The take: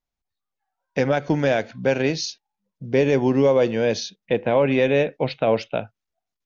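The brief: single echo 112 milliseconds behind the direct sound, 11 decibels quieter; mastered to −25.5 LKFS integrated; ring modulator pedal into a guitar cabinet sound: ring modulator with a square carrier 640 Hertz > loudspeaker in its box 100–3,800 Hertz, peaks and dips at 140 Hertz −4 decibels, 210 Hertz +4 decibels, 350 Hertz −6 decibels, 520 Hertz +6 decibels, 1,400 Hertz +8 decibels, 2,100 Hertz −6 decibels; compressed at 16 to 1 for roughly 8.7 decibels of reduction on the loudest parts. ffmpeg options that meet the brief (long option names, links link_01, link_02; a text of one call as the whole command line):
ffmpeg -i in.wav -af "acompressor=threshold=-22dB:ratio=16,aecho=1:1:112:0.282,aeval=exprs='val(0)*sgn(sin(2*PI*640*n/s))':channel_layout=same,highpass=100,equalizer=frequency=140:width_type=q:width=4:gain=-4,equalizer=frequency=210:width_type=q:width=4:gain=4,equalizer=frequency=350:width_type=q:width=4:gain=-6,equalizer=frequency=520:width_type=q:width=4:gain=6,equalizer=frequency=1400:width_type=q:width=4:gain=8,equalizer=frequency=2100:width_type=q:width=4:gain=-6,lowpass=frequency=3800:width=0.5412,lowpass=frequency=3800:width=1.3066,volume=1dB" out.wav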